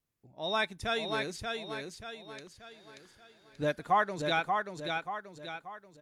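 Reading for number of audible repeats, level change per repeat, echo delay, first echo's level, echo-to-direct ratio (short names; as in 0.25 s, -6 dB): 5, -7.5 dB, 0.583 s, -4.5 dB, -3.5 dB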